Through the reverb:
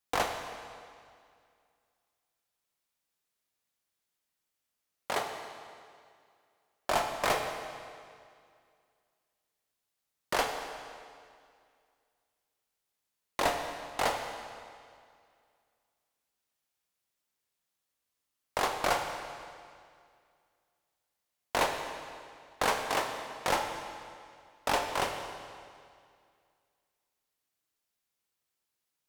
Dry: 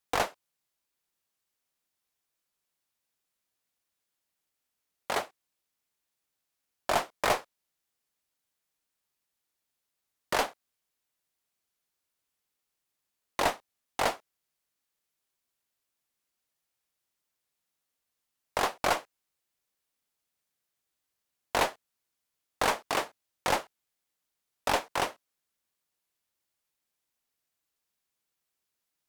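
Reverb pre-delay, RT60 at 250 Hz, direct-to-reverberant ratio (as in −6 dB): 27 ms, 2.2 s, 4.0 dB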